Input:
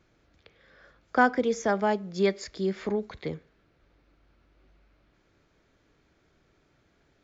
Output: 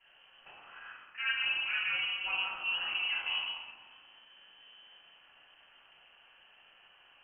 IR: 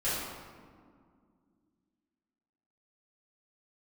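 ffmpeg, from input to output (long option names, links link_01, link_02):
-filter_complex "[0:a]highshelf=frequency=2300:gain=5.5,areverse,acompressor=threshold=-33dB:ratio=20,areverse,lowpass=frequency=2600:width_type=q:width=0.5098,lowpass=frequency=2600:width_type=q:width=0.6013,lowpass=frequency=2600:width_type=q:width=0.9,lowpass=frequency=2600:width_type=q:width=2.563,afreqshift=-3100[link_01];[1:a]atrim=start_sample=2205[link_02];[link_01][link_02]afir=irnorm=-1:irlink=0,tremolo=f=250:d=0.519"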